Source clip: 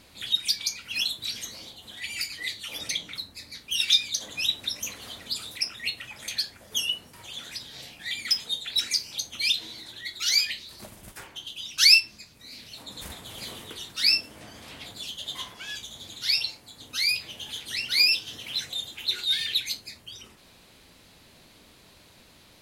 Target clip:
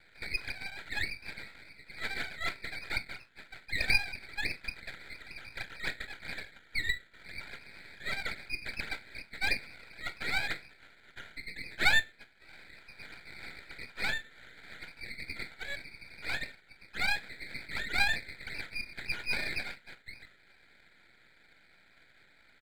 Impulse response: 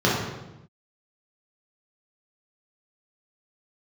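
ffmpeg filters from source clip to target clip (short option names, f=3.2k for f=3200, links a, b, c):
-filter_complex "[0:a]asplit=2[a][b];[b]asetrate=29433,aresample=44100,atempo=1.49831,volume=-3dB[c];[a][c]amix=inputs=2:normalize=0,asuperpass=centerf=1800:order=20:qfactor=1.6,aeval=exprs='max(val(0),0)':c=same,volume=3.5dB"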